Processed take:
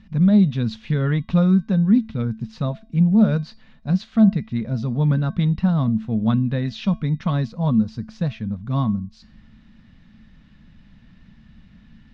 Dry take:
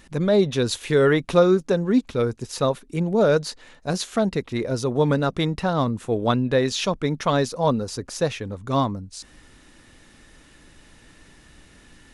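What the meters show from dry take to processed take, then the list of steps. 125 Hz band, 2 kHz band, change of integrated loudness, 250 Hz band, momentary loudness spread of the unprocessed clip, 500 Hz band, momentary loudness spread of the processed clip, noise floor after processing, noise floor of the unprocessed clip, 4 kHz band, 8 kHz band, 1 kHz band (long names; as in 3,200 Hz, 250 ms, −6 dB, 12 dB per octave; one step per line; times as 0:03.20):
+7.0 dB, −7.5 dB, +1.5 dB, +5.5 dB, 9 LU, −11.5 dB, 10 LU, −50 dBFS, −52 dBFS, −9.0 dB, below −20 dB, −8.0 dB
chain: low-pass filter 4,400 Hz 24 dB per octave
low shelf with overshoot 270 Hz +10 dB, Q 3
tuned comb filter 220 Hz, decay 0.35 s, harmonics odd, mix 60%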